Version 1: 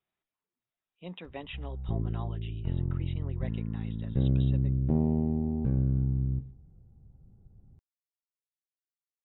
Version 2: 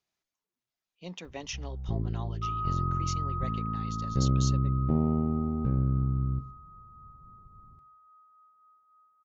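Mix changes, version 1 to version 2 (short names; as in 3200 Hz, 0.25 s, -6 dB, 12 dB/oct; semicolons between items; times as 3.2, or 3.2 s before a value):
speech: remove brick-wall FIR low-pass 3900 Hz; second sound: unmuted; master: remove air absorption 130 m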